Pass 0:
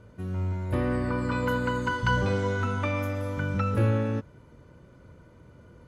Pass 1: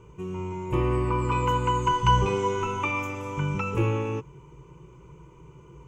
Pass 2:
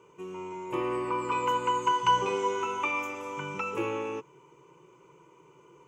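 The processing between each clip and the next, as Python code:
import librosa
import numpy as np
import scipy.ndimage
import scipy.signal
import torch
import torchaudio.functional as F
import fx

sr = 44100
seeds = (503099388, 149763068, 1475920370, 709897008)

y1 = fx.ripple_eq(x, sr, per_octave=0.72, db=17)
y2 = scipy.signal.sosfilt(scipy.signal.butter(2, 340.0, 'highpass', fs=sr, output='sos'), y1)
y2 = y2 * 10.0 ** (-1.5 / 20.0)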